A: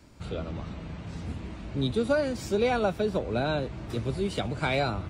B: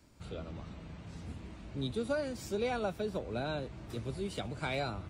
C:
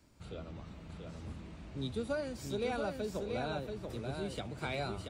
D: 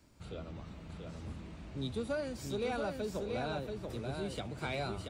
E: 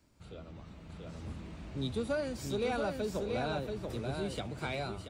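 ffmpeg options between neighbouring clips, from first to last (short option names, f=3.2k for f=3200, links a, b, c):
-af "highshelf=f=7.7k:g=7,volume=-8.5dB"
-af "aecho=1:1:683:0.596,volume=-2.5dB"
-af "asoftclip=type=tanh:threshold=-27dB,volume=1dB"
-af "dynaudnorm=f=420:g=5:m=6.5dB,volume=-4dB"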